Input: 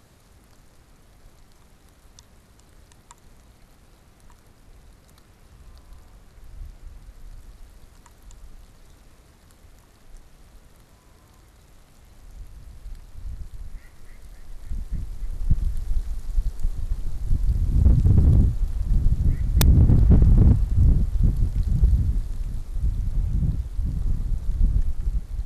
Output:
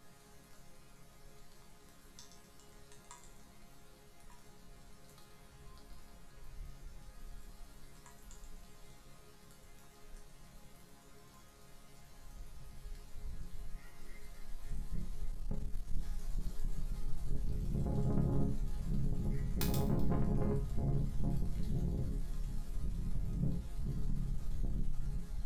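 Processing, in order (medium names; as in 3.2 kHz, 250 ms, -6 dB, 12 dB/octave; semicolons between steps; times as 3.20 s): on a send: feedback echo behind a high-pass 127 ms, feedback 34%, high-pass 2.6 kHz, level -7.5 dB; on the sum: saturation -23 dBFS, distortion -6 dB; chord resonator C#3 major, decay 0.36 s; 15.32–15.96 s: power-law waveshaper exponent 1.4; trim +11 dB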